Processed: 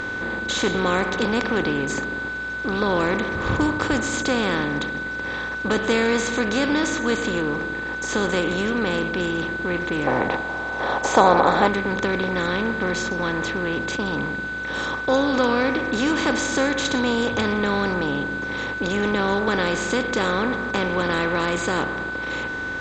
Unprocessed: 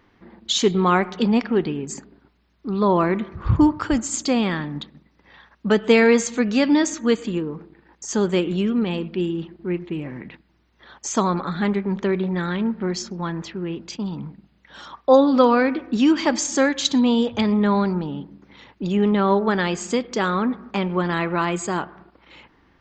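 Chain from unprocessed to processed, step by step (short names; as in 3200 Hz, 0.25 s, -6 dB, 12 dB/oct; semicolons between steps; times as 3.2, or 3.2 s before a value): per-bin compression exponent 0.4; 10.07–11.68 bell 760 Hz +14.5 dB 1.2 oct; whine 1500 Hz -18 dBFS; gain -9 dB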